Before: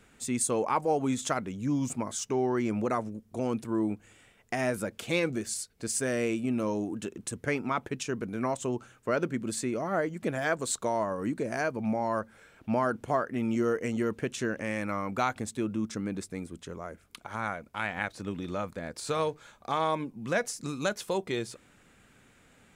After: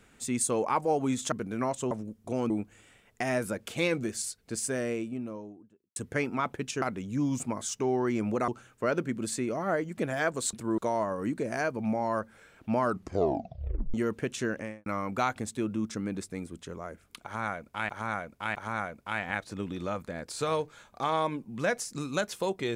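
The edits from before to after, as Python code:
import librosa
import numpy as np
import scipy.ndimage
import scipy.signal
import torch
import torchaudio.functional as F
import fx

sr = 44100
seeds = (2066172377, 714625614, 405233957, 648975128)

y = fx.studio_fade_out(x, sr, start_s=5.7, length_s=1.58)
y = fx.studio_fade_out(y, sr, start_s=14.54, length_s=0.32)
y = fx.edit(y, sr, fx.swap(start_s=1.32, length_s=1.66, other_s=8.14, other_length_s=0.59),
    fx.move(start_s=3.57, length_s=0.25, to_s=10.78),
    fx.tape_stop(start_s=12.81, length_s=1.13),
    fx.repeat(start_s=17.23, length_s=0.66, count=3), tone=tone)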